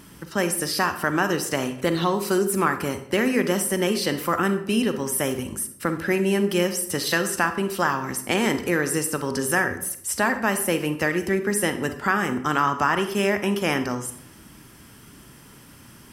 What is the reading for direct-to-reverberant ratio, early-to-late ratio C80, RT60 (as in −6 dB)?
8.5 dB, 14.0 dB, 0.70 s